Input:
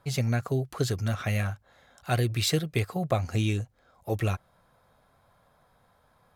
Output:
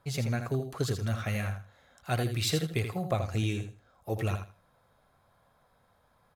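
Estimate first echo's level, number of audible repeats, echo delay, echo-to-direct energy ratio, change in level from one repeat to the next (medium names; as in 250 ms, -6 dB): -8.0 dB, 2, 81 ms, -8.0 dB, -14.0 dB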